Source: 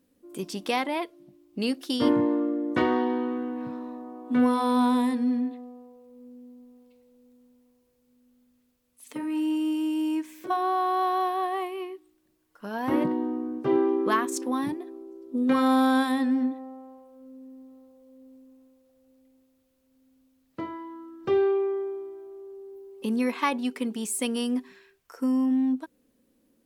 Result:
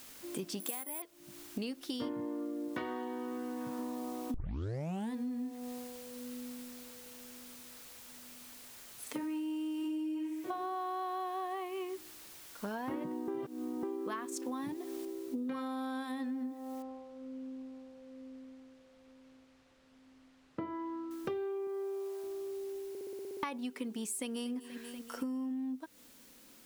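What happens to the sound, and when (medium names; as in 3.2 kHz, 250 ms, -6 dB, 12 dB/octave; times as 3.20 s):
0.60–1.02 s: careless resampling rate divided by 4×, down filtered, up zero stuff
2.68–3.79 s: bass shelf 410 Hz -5 dB
4.34 s: tape start 0.80 s
9.78–10.49 s: reverb throw, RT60 0.84 s, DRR -2.5 dB
11.89–12.68 s: median filter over 15 samples
13.28–13.83 s: reverse
15.05 s: noise floor step -55 dB -62 dB
16.82–21.11 s: tape spacing loss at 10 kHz 24 dB
21.67–22.24 s: brick-wall FIR high-pass 370 Hz
22.89 s: stutter in place 0.06 s, 9 plays
24.12–24.53 s: echo throw 240 ms, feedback 60%, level -18 dB
whole clip: compression 12:1, threshold -38 dBFS; trim +2.5 dB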